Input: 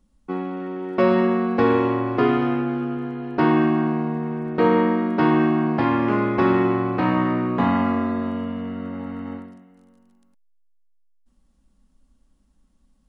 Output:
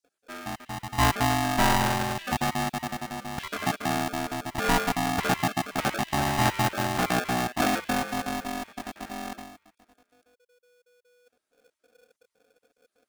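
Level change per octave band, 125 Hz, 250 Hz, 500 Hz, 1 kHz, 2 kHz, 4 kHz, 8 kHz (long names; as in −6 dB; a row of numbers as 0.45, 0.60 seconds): −4.0 dB, −11.0 dB, −10.5 dB, −1.5 dB, +0.5 dB, +8.5 dB, can't be measured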